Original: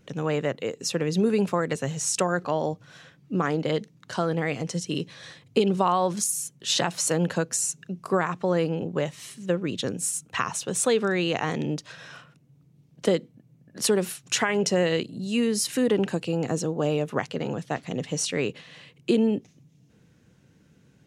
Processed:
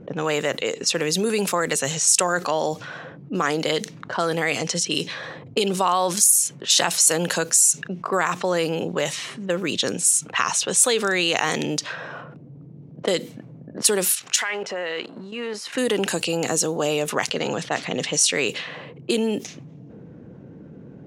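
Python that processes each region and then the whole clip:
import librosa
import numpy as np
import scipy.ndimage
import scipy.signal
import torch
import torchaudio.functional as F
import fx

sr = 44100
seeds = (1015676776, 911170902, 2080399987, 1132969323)

y = fx.chain(x, sr, fx.law_mismatch(coded='mu'),
    fx.highpass(hz=1200.0, slope=6),
    fx.level_steps(step_db=12), at=(14.12, 15.75))
y = fx.env_lowpass(y, sr, base_hz=430.0, full_db=-23.0)
y = fx.riaa(y, sr, side='recording')
y = fx.env_flatten(y, sr, amount_pct=50)
y = y * 10.0 ** (-2.5 / 20.0)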